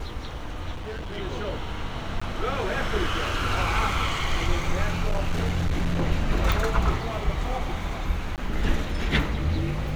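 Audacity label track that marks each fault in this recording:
0.740000	1.180000	clipped -30.5 dBFS
2.200000	2.210000	dropout 15 ms
5.060000	6.030000	clipped -20 dBFS
6.520000	6.520000	pop
8.360000	8.380000	dropout 18 ms

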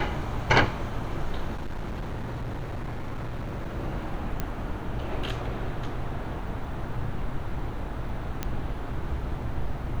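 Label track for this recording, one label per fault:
1.570000	3.760000	clipped -29 dBFS
4.400000	4.400000	pop -15 dBFS
8.430000	8.430000	pop -14 dBFS

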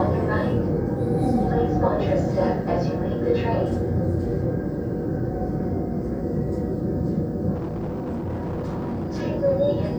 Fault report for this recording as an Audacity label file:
7.550000	9.220000	clipped -24.5 dBFS

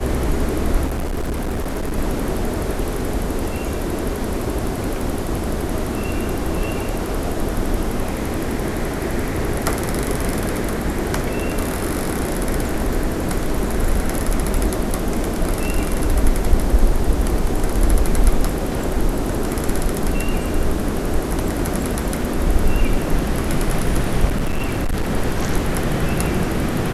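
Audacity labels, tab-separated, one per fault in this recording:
0.860000	1.980000	clipped -19.5 dBFS
5.000000	5.000000	dropout 2.2 ms
24.280000	25.110000	clipped -16 dBFS

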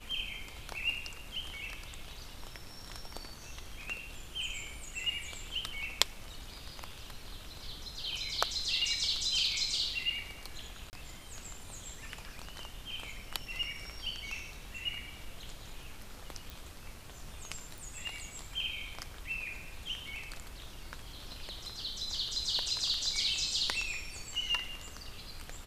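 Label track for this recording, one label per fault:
10.900000	10.930000	dropout 29 ms
16.500000	16.500000	pop
17.780000	17.780000	pop

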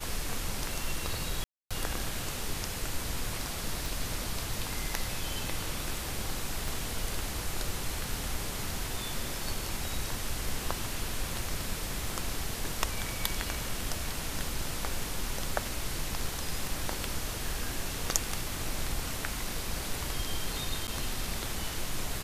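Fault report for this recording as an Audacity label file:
1.440000	1.710000	dropout 266 ms
3.860000	3.860000	pop
6.680000	6.680000	pop
20.870000	20.880000	dropout 9.1 ms

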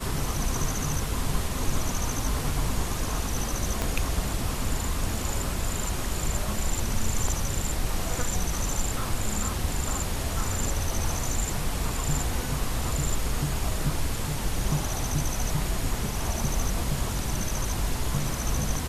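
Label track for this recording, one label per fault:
3.820000	3.820000	pop -12 dBFS

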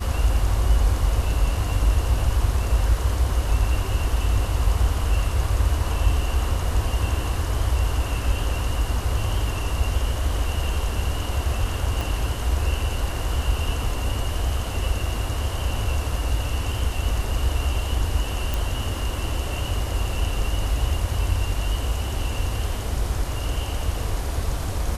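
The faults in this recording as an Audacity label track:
12.010000	12.010000	pop
18.540000	18.540000	pop

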